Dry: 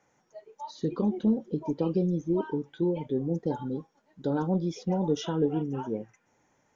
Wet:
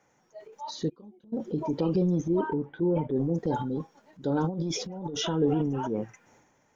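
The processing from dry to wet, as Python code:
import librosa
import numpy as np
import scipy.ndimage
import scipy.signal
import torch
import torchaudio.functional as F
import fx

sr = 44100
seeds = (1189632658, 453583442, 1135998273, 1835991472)

y = fx.gate_flip(x, sr, shuts_db=-30.0, range_db=-32, at=(0.88, 1.32), fade=0.02)
y = fx.lowpass(y, sr, hz=1500.0, slope=12, at=(2.41, 3.16))
y = fx.over_compress(y, sr, threshold_db=-33.0, ratio=-0.5, at=(4.44, 5.27))
y = fx.transient(y, sr, attack_db=-2, sustain_db=8)
y = y * 10.0 ** (1.5 / 20.0)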